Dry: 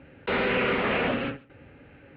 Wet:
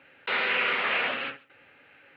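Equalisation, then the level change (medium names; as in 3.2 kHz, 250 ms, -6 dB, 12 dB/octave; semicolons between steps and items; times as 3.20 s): high-pass 88 Hz; tilt shelf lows -7.5 dB, about 670 Hz; bass shelf 370 Hz -9.5 dB; -3.0 dB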